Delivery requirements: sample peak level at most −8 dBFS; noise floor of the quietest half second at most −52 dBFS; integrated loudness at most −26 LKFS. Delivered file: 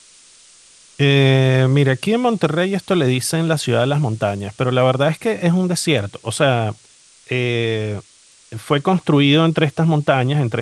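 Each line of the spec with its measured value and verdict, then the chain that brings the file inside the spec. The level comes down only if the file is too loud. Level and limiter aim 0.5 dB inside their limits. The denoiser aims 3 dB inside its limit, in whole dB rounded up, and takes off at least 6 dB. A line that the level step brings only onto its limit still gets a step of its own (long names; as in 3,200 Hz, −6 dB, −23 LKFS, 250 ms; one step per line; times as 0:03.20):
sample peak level −1.5 dBFS: out of spec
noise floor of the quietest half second −50 dBFS: out of spec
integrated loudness −17.5 LKFS: out of spec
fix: level −9 dB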